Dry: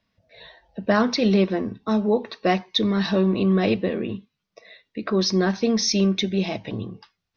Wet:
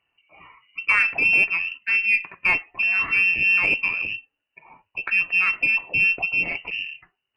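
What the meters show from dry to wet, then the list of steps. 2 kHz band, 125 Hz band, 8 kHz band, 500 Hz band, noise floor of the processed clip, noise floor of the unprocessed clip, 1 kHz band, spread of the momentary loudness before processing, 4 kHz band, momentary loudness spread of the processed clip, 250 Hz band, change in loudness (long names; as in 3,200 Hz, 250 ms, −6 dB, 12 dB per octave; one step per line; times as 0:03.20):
+15.5 dB, −19.0 dB, can't be measured, −20.0 dB, −81 dBFS, −80 dBFS, −5.5 dB, 13 LU, −7.0 dB, 13 LU, −23.5 dB, +3.0 dB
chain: voice inversion scrambler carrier 2,900 Hz
harmonic generator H 2 −25 dB, 4 −30 dB, 8 −45 dB, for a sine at −6 dBFS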